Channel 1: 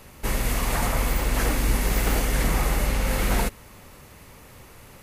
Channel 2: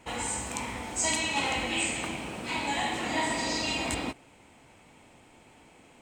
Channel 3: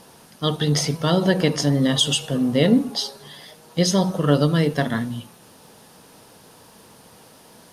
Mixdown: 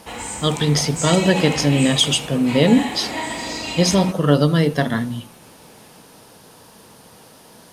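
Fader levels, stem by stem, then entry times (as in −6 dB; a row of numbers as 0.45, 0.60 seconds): muted, +2.5 dB, +2.5 dB; muted, 0.00 s, 0.00 s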